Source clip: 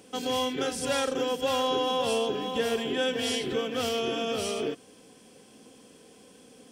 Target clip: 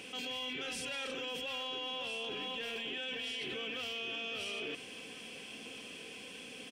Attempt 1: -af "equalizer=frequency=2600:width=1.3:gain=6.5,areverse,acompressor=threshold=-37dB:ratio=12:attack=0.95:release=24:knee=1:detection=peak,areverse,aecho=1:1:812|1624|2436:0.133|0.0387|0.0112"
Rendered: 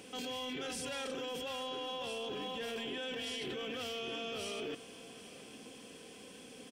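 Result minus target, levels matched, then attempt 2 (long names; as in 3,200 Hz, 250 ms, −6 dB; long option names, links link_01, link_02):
echo 563 ms early; 2,000 Hz band −4.0 dB
-af "equalizer=frequency=2600:width=1.3:gain=17.5,areverse,acompressor=threshold=-37dB:ratio=12:attack=0.95:release=24:knee=1:detection=peak,areverse,aecho=1:1:1375|2750|4125:0.133|0.0387|0.0112"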